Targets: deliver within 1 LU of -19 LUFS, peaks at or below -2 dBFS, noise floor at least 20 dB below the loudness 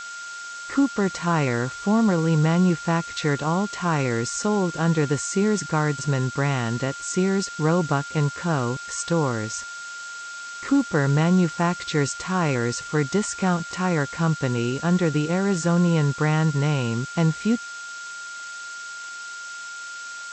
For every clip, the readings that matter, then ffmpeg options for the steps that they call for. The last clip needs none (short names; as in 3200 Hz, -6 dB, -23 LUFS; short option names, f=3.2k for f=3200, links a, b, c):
steady tone 1400 Hz; tone level -34 dBFS; noise floor -36 dBFS; noise floor target -43 dBFS; loudness -23.0 LUFS; peak -9.0 dBFS; loudness target -19.0 LUFS
-> -af "bandreject=f=1.4k:w=30"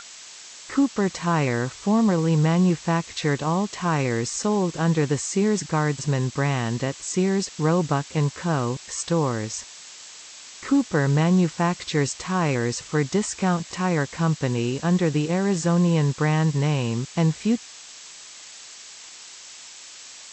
steady tone none; noise floor -43 dBFS; noise floor target -44 dBFS
-> -af "afftdn=nr=6:nf=-43"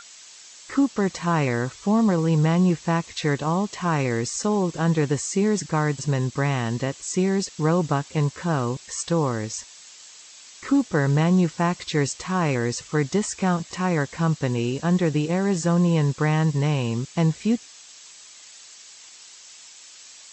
noise floor -46 dBFS; loudness -23.5 LUFS; peak -9.5 dBFS; loudness target -19.0 LUFS
-> -af "volume=4.5dB"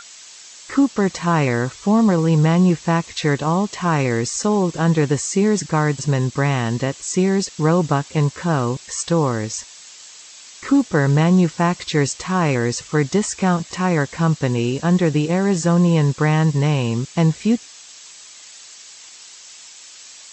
loudness -19.0 LUFS; peak -5.0 dBFS; noise floor -42 dBFS